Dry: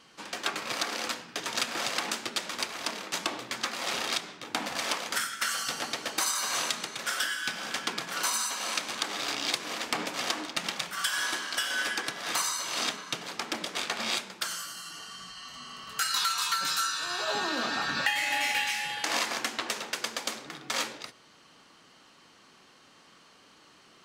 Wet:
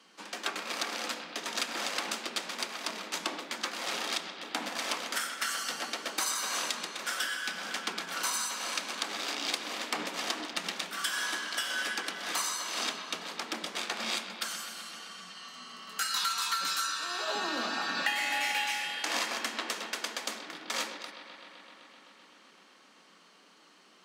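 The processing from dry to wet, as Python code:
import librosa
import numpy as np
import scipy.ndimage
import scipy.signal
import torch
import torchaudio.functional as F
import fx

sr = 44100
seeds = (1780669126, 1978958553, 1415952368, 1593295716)

y = scipy.signal.sosfilt(scipy.signal.butter(12, 170.0, 'highpass', fs=sr, output='sos'), x)
y = fx.echo_bbd(y, sr, ms=128, stages=4096, feedback_pct=84, wet_db=-13.0)
y = F.gain(torch.from_numpy(y), -3.0).numpy()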